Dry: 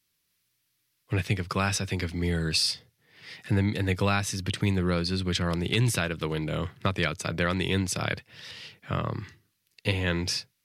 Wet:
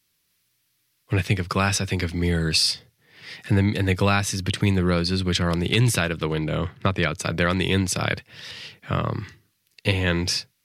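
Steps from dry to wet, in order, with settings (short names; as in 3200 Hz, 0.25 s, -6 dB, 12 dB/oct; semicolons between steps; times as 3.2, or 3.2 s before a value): 6.17–7.14 high shelf 8100 Hz -> 4100 Hz -8.5 dB; gain +5 dB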